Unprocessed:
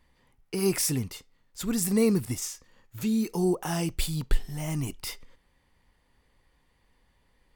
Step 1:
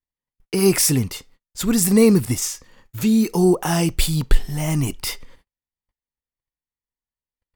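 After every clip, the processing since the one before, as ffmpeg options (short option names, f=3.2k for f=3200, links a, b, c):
-af "agate=range=-41dB:threshold=-58dB:ratio=16:detection=peak,acontrast=55,volume=3.5dB"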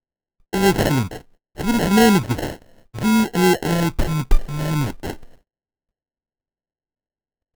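-af "acrusher=samples=37:mix=1:aa=0.000001"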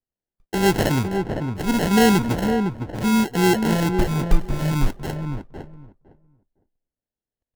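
-filter_complex "[0:a]asplit=2[a][b];[b]adelay=508,lowpass=f=1.1k:p=1,volume=-5dB,asplit=2[c][d];[d]adelay=508,lowpass=f=1.1k:p=1,volume=0.16,asplit=2[e][f];[f]adelay=508,lowpass=f=1.1k:p=1,volume=0.16[g];[a][c][e][g]amix=inputs=4:normalize=0,volume=-2dB"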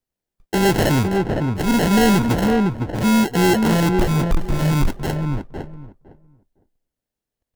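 -af "asoftclip=type=tanh:threshold=-17dB,volume=6dB"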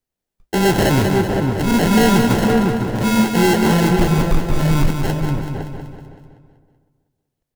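-filter_complex "[0:a]flanger=delay=6.6:depth=6.9:regen=-74:speed=1.6:shape=sinusoidal,asplit=2[a][b];[b]aecho=0:1:190|380|570|760|950|1140:0.473|0.246|0.128|0.0665|0.0346|0.018[c];[a][c]amix=inputs=2:normalize=0,volume=5.5dB"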